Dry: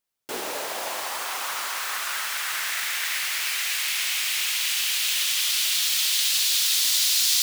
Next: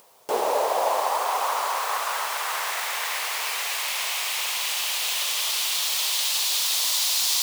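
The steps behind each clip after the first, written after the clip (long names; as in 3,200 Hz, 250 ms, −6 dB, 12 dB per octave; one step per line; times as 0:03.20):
flat-topped bell 680 Hz +13.5 dB
upward compression, threshold −32 dBFS
high-pass filter 89 Hz
level −2 dB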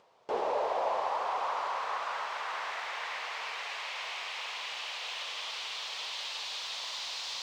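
high-shelf EQ 6,300 Hz −4.5 dB
in parallel at −6 dB: soft clipping −24 dBFS, distortion −12 dB
on the sum: high-frequency loss of the air 160 metres
level −9 dB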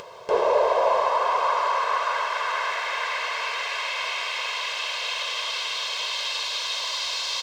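comb filter 1.9 ms, depth 73%
upward compression, threshold −39 dBFS
level +8 dB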